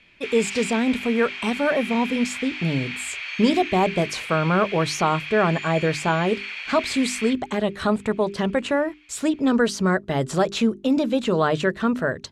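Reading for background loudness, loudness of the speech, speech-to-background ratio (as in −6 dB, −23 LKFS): −31.0 LKFS, −23.0 LKFS, 8.0 dB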